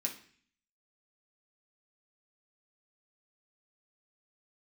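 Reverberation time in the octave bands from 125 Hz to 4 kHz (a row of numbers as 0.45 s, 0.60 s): 0.75 s, 0.70 s, 0.50 s, 0.50 s, 0.65 s, 0.60 s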